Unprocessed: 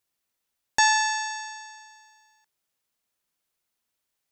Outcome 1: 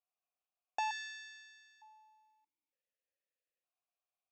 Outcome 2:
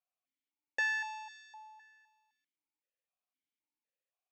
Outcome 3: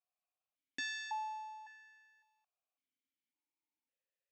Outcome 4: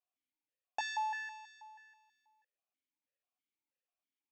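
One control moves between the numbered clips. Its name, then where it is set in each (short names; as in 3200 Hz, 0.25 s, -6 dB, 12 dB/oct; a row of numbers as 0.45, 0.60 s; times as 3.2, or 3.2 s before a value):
vowel sequencer, rate: 1.1, 3.9, 1.8, 6.2 Hz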